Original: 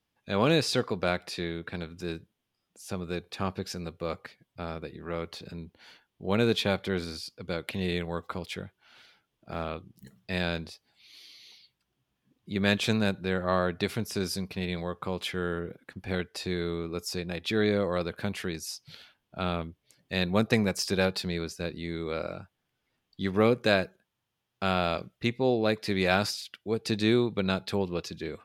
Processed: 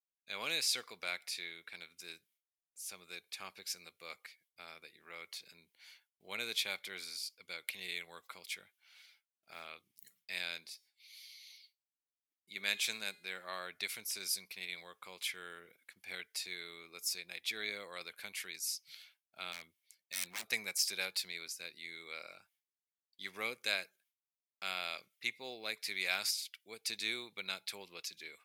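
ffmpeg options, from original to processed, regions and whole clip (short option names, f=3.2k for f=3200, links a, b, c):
-filter_complex "[0:a]asettb=1/sr,asplit=3[a][b][c];[a]atrim=end=10.594[d];[b]atrim=start=10.59:end=13.6,asetpts=PTS-STARTPTS,afade=t=in:d=0.004:c=qsin,afade=t=out:st=3.006:d=0.004:c=qsin,equalizer=f=86:t=o:w=0.82:g=-7,bandreject=f=412.3:t=h:w=4,bandreject=f=824.6:t=h:w=4,bandreject=f=1.2369k:t=h:w=4,bandreject=f=1.6492k:t=h:w=4,bandreject=f=2.0615k:t=h:w=4,bandreject=f=2.4738k:t=h:w=4,bandreject=f=2.8861k:t=h:w=4,bandreject=f=3.2984k:t=h:w=4,bandreject=f=3.7107k:t=h:w=4,bandreject=f=4.123k:t=h:w=4,bandreject=f=4.5353k:t=h:w=4,bandreject=f=4.9476k:t=h:w=4,bandreject=f=5.3599k:t=h:w=4,bandreject=f=5.7722k:t=h:w=4,bandreject=f=6.1845k:t=h:w=4,bandreject=f=6.5968k:t=h:w=4,bandreject=f=7.0091k:t=h:w=4,bandreject=f=7.4214k:t=h:w=4,bandreject=f=7.8337k:t=h:w=4,bandreject=f=8.246k:t=h:w=4,bandreject=f=8.6583k:t=h:w=4,bandreject=f=9.0706k:t=h:w=4,bandreject=f=9.4829k:t=h:w=4,bandreject=f=9.8952k:t=h:w=4,bandreject=f=10.3075k:t=h:w=4,bandreject=f=10.7198k:t=h:w=4,bandreject=f=11.1321k:t=h:w=4,bandreject=f=11.5444k:t=h:w=4,bandreject=f=11.9567k:t=h:w=4,bandreject=f=12.369k:t=h:w=4,bandreject=f=12.7813k:t=h:w=4,bandreject=f=13.1936k:t=h:w=4,bandreject=f=13.6059k:t=h:w=4,bandreject=f=14.0182k:t=h:w=4,bandreject=f=14.4305k:t=h:w=4[e];[c]atrim=start=13.596[f];[d][e]acrossfade=d=0.004:c1=hsin:c2=qsin[g];[g][f]acrossfade=d=0.004:c1=qsin:c2=hsin,asettb=1/sr,asplit=3[h][i][j];[h]atrim=end=19.524[k];[i]atrim=start=19.52:end=20.48,asetpts=PTS-STARTPTS,afade=t=in:d=0.004:c=qsin,afade=t=out:st=0.956:d=0.004:c=qsin,highpass=f=44:w=0.5412,highpass=f=44:w=1.3066,aeval=exprs='0.0501*(abs(mod(val(0)/0.0501+3,4)-2)-1)':c=same[l];[j]atrim=start=20.476[m];[k][l]acrossfade=d=0.004:c1=hsin:c2=qsin[n];[n][m]acrossfade=d=0.004:c1=qsin:c2=hsin,equalizer=f=2.2k:t=o:w=0.24:g=10,agate=range=-33dB:threshold=-57dB:ratio=3:detection=peak,aderivative,volume=1dB"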